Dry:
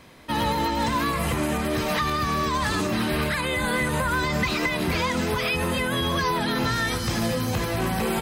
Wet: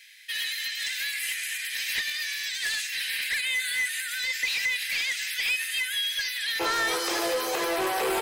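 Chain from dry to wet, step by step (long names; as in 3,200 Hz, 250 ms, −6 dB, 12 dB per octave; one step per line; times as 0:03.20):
Butterworth high-pass 1,700 Hz 72 dB per octave, from 0:06.59 330 Hz
soft clipping −25.5 dBFS, distortion −14 dB
level +4 dB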